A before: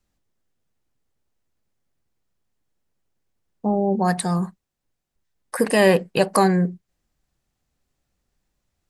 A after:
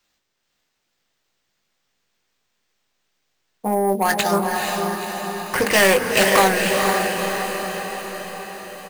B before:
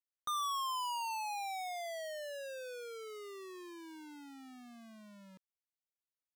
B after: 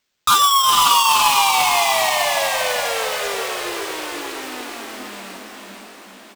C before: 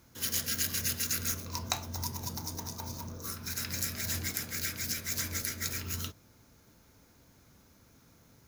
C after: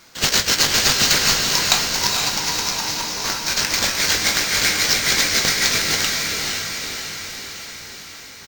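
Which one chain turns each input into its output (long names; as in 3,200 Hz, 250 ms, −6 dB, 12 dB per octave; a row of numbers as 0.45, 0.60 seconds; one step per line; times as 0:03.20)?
low-shelf EQ 410 Hz −8 dB
mid-hump overdrive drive 17 dB, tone 5,600 Hz, clips at −4.5 dBFS
mains-hum notches 60/120/180/240/300/360/420/480/540/600 Hz
sample-rate reduction 11,000 Hz, jitter 0%
parametric band 910 Hz −5 dB 2 octaves
double-tracking delay 20 ms −9 dB
feedback delay with all-pass diffusion 481 ms, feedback 61%, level −3 dB
highs frequency-modulated by the lows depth 0.17 ms
normalise the peak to −1.5 dBFS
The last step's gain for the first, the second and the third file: +2.0, +15.5, +8.5 decibels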